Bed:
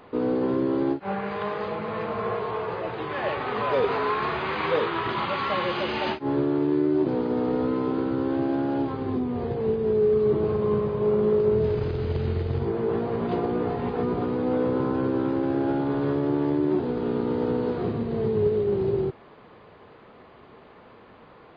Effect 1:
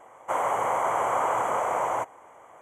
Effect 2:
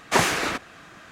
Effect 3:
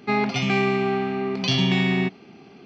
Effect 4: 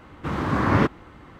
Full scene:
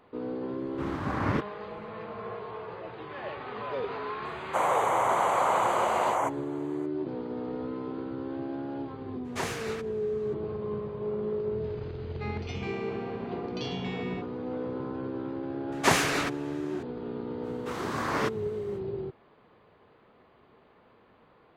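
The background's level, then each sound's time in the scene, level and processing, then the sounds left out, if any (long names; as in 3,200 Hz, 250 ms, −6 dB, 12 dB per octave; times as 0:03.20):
bed −10 dB
0:00.54: mix in 4 −8 dB, fades 0.10 s + transient designer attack −2 dB, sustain −10 dB
0:04.25: mix in 1
0:09.24: mix in 2 −13.5 dB, fades 0.02 s
0:12.13: mix in 3 −16 dB
0:15.72: mix in 2 −3 dB
0:17.42: mix in 4 −6.5 dB, fades 0.05 s + bass and treble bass −15 dB, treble +12 dB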